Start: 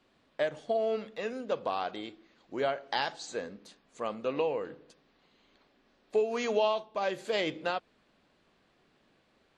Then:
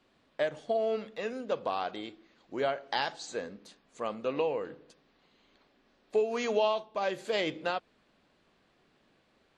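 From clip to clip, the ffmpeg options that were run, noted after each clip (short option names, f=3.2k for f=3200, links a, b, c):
-af anull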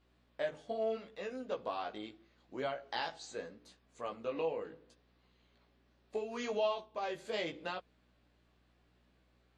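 -af "flanger=delay=15.5:depth=3.2:speed=0.76,aeval=exprs='val(0)+0.000398*(sin(2*PI*60*n/s)+sin(2*PI*2*60*n/s)/2+sin(2*PI*3*60*n/s)/3+sin(2*PI*4*60*n/s)/4+sin(2*PI*5*60*n/s)/5)':c=same,volume=-3.5dB"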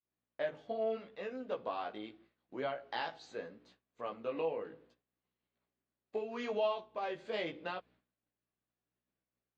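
-af "highpass=100,lowpass=3.6k,agate=range=-33dB:threshold=-60dB:ratio=3:detection=peak"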